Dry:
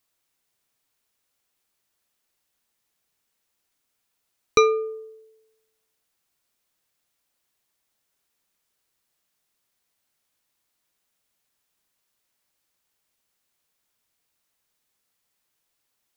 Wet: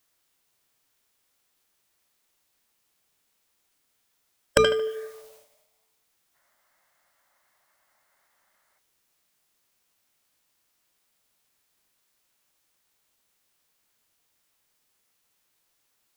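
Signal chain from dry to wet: notches 60/120/180/240 Hz; tape echo 77 ms, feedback 34%, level -17 dB, low-pass 3200 Hz; in parallel at +1 dB: compressor, threshold -29 dBFS, peak gain reduction 16 dB; on the sum: formant shift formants +5 st; spectral gain 6.35–8.78, 530–2200 Hz +11 dB; gain -2.5 dB

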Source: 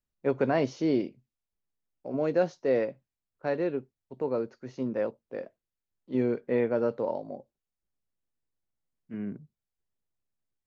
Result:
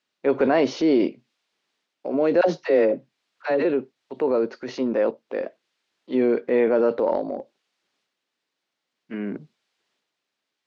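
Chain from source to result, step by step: Chebyshev band-pass 290–4000 Hz, order 2; in parallel at -3 dB: limiter -24 dBFS, peak gain reduction 9.5 dB; 2.41–3.65 on the sum: dispersion lows, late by 69 ms, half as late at 530 Hz; transient shaper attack -1 dB, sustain +6 dB; mismatched tape noise reduction encoder only; gain +5 dB

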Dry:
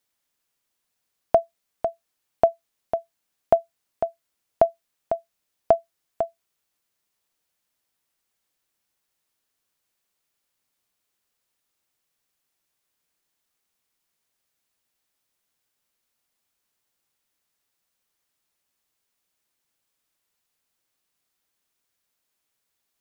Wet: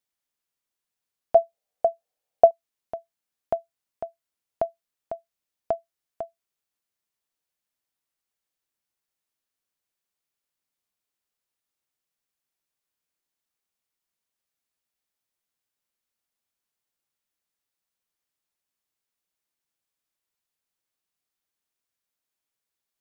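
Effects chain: 1.35–2.51 band shelf 600 Hz +12.5 dB 1 oct; gain -8.5 dB

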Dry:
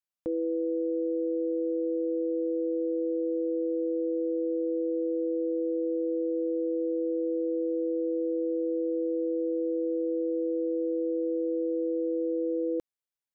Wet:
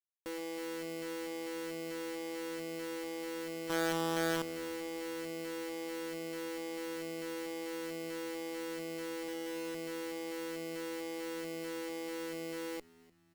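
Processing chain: 9.28–9.75 low shelf 160 Hz +7 dB; bit-crush 5-bit; hard clip -39 dBFS, distortion -73 dB; 3.65–4.42 doubler 46 ms -4 dB; added harmonics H 3 -9 dB, 8 -25 dB, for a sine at -34.5 dBFS; frequency-shifting echo 0.299 s, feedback 42%, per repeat -78 Hz, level -22.5 dB; gain +9.5 dB

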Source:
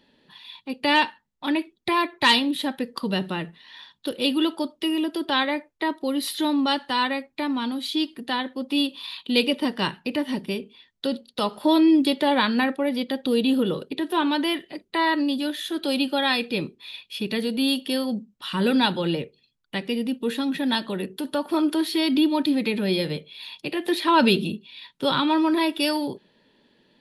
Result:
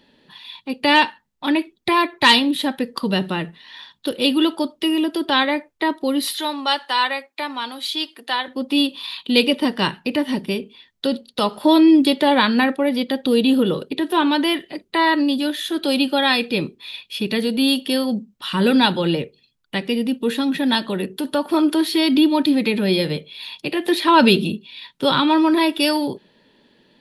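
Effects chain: 6.33–8.48 HPF 590 Hz 12 dB/oct; gain +5 dB

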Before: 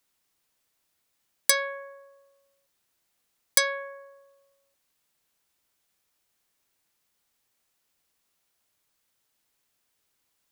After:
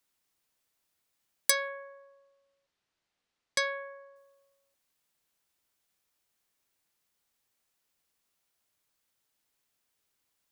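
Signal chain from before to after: 1.68–4.16 LPF 4800 Hz 12 dB/oct; gain -4 dB

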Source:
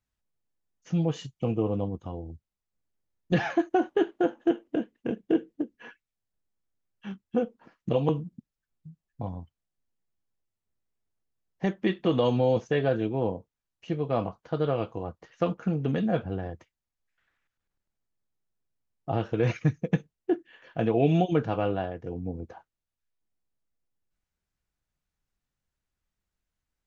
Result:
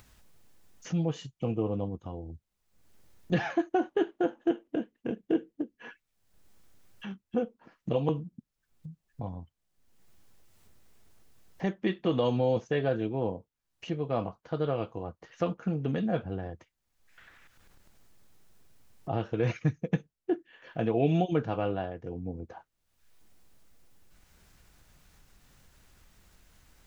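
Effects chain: upward compressor, threshold -33 dBFS; gain -3 dB

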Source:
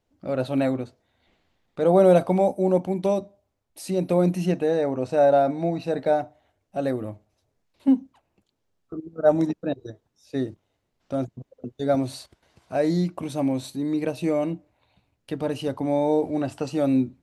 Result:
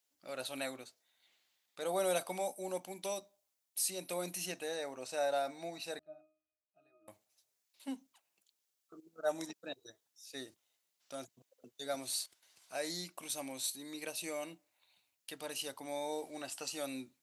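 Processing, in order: differentiator; 5.99–7.08 octave resonator D#, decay 0.5 s; gain +5 dB

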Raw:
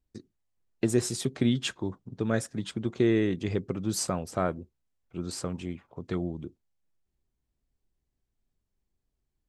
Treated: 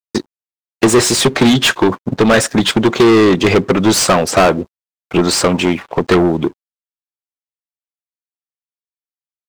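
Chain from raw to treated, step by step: transient shaper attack +7 dB, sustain -1 dB; overdrive pedal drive 36 dB, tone 3800 Hz, clips at -4.5 dBFS; crossover distortion -43.5 dBFS; gain +3.5 dB

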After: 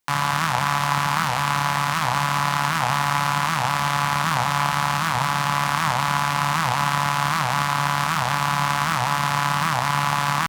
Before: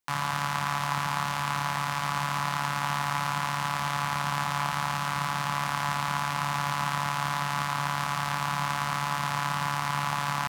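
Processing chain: record warp 78 rpm, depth 250 cents; gain +7.5 dB

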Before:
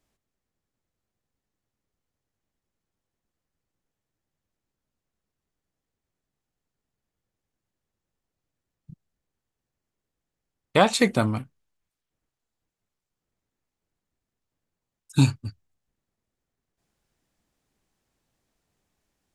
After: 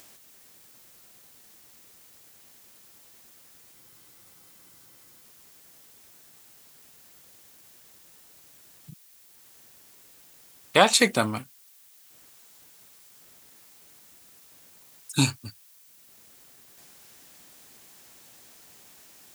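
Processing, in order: HPF 110 Hz 6 dB/oct; tilt +2 dB/oct; upward compressor, threshold -40 dBFS; added noise blue -57 dBFS; spectral freeze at 3.77, 1.45 s; gain +1.5 dB

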